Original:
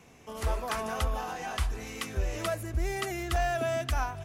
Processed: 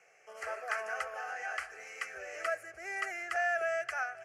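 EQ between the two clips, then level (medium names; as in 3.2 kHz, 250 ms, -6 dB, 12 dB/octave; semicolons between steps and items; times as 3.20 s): dynamic bell 1.6 kHz, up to +5 dB, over -47 dBFS, Q 1.6; band-pass 690–5900 Hz; static phaser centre 990 Hz, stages 6; 0.0 dB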